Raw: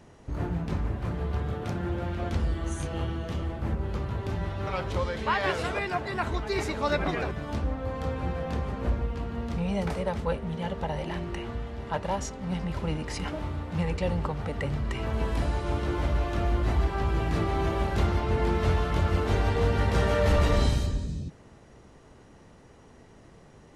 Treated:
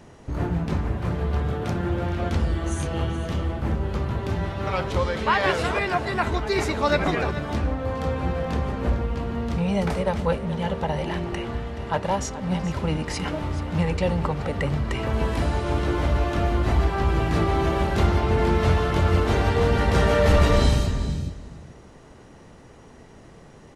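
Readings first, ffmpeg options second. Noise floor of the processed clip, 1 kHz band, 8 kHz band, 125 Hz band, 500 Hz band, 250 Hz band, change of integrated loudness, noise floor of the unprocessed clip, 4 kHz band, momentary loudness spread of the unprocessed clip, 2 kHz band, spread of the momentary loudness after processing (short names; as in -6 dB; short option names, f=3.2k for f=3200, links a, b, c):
-47 dBFS, +5.5 dB, +5.5 dB, +5.0 dB, +5.5 dB, +5.5 dB, +5.0 dB, -53 dBFS, +5.5 dB, 8 LU, +5.5 dB, 7 LU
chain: -af "bandreject=f=50:t=h:w=6,bandreject=f=100:t=h:w=6,aecho=1:1:427:0.188,volume=5.5dB"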